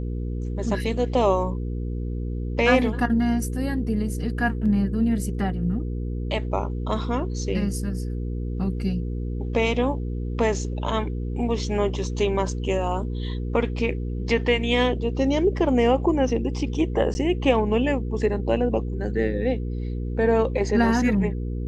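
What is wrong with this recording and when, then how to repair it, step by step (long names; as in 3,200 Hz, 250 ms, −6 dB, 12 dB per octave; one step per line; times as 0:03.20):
mains hum 60 Hz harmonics 8 −28 dBFS
0:17.14–0:17.15: drop-out 10 ms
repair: hum removal 60 Hz, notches 8
repair the gap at 0:17.14, 10 ms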